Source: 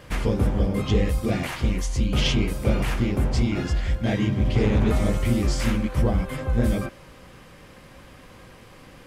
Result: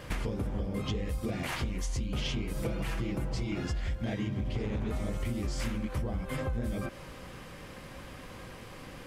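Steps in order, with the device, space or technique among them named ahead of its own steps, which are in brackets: 2.56–3.56 comb 6.1 ms, depth 74%; serial compression, peaks first (compressor, threshold -27 dBFS, peak gain reduction 11 dB; compressor 2:1, threshold -33 dBFS, peak gain reduction 5.5 dB); gain +1 dB

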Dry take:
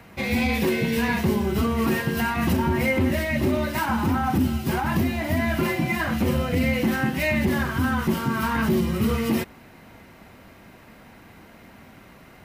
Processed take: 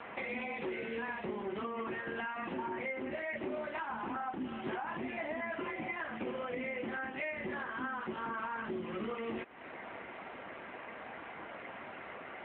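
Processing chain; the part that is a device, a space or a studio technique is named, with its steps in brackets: voicemail (BPF 410–2700 Hz; compressor 12:1, threshold -42 dBFS, peak gain reduction 21.5 dB; gain +7 dB; AMR-NB 7.95 kbps 8000 Hz)

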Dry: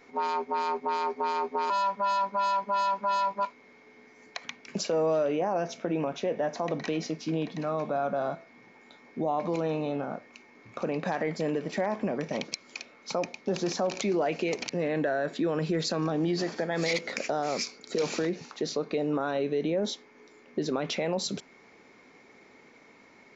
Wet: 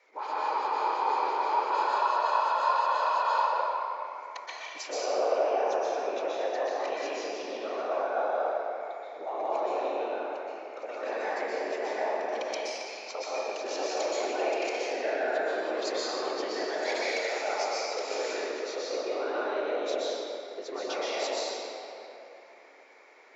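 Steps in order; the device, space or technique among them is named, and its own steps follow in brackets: whispering ghost (whisperiser; HPF 440 Hz 24 dB/oct; reverb RT60 3.0 s, pre-delay 0.115 s, DRR -8 dB); gain -7 dB

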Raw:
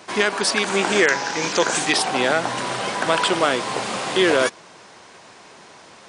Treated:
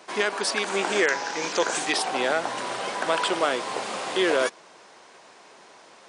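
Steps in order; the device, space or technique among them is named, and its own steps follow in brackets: filter by subtraction (in parallel: LPF 480 Hz 12 dB/oct + phase invert); on the sum: gain -6 dB

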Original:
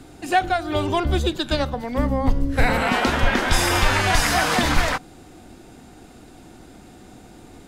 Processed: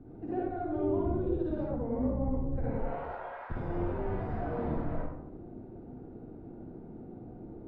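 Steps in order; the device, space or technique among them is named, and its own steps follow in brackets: 2.77–3.49 HPF 450 Hz -> 1000 Hz 24 dB/oct; bell 6200 Hz -4.5 dB 0.51 oct; television next door (compressor 4:1, threshold -26 dBFS, peak gain reduction 12.5 dB; LPF 530 Hz 12 dB/oct; reverb RT60 0.80 s, pre-delay 49 ms, DRR -6.5 dB); gain -7.5 dB

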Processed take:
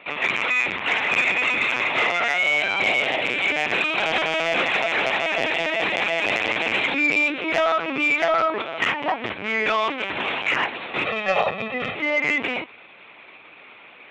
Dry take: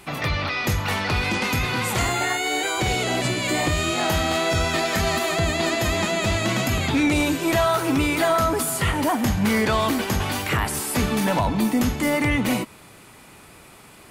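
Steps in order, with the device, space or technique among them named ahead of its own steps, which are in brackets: talking toy (LPC vocoder at 8 kHz pitch kept; HPF 350 Hz 12 dB/oct; bell 2400 Hz +9 dB 0.56 oct; soft clip -11 dBFS, distortion -20 dB); 11.05–11.95 comb 1.6 ms, depth 87%; gain +1 dB

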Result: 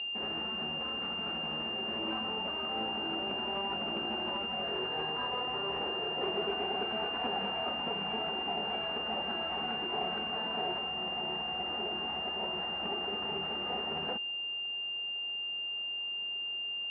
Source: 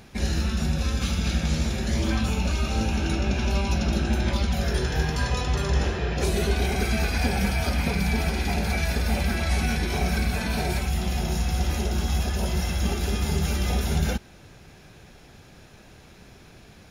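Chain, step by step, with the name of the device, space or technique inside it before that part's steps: toy sound module (decimation joined by straight lines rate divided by 6×; pulse-width modulation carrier 2800 Hz; speaker cabinet 520–3900 Hz, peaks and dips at 570 Hz -6 dB, 1500 Hz -4 dB, 2200 Hz -5 dB)

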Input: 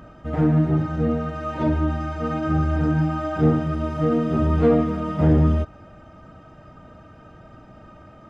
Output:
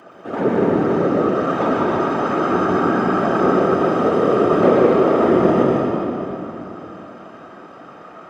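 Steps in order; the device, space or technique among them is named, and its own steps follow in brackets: whispering ghost (whisperiser; HPF 310 Hz 12 dB/oct; reverb RT60 3.2 s, pre-delay 0.112 s, DRR -3 dB); gain +4.5 dB

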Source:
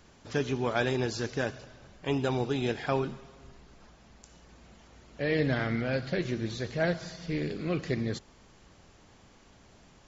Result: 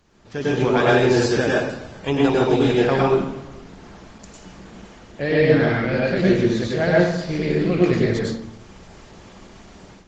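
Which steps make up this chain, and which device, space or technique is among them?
speakerphone in a meeting room (reverb RT60 0.70 s, pre-delay 97 ms, DRR -4.5 dB; AGC gain up to 12.5 dB; gain -2.5 dB; Opus 20 kbps 48000 Hz)

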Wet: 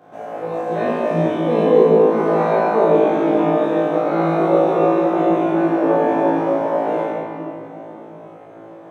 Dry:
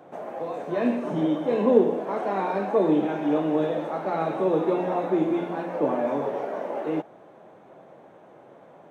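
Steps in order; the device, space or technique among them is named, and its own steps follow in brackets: tunnel (flutter echo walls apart 3.1 m, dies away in 0.82 s; reverb RT60 3.1 s, pre-delay 30 ms, DRR -3 dB); gain -1.5 dB

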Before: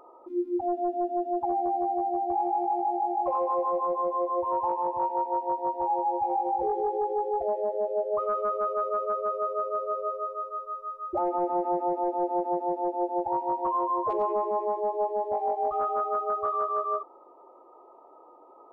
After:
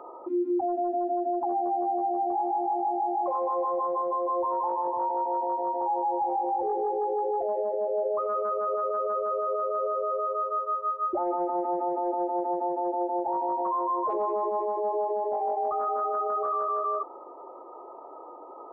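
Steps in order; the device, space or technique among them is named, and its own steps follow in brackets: DJ mixer with the lows and highs turned down (three-band isolator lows -13 dB, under 190 Hz, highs -16 dB, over 2100 Hz; limiter -30.5 dBFS, peak gain reduction 11.5 dB); gain +9 dB

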